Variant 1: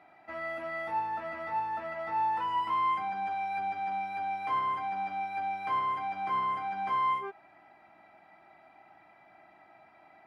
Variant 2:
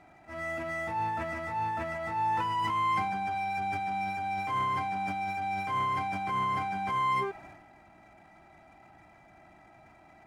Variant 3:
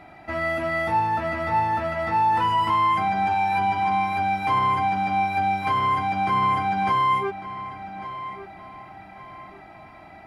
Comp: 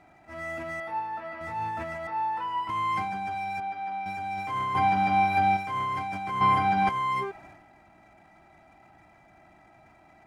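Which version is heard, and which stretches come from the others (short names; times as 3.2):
2
0.8–1.41 from 1
2.07–2.69 from 1
3.6–4.06 from 1
4.75–5.57 from 3
6.41–6.89 from 3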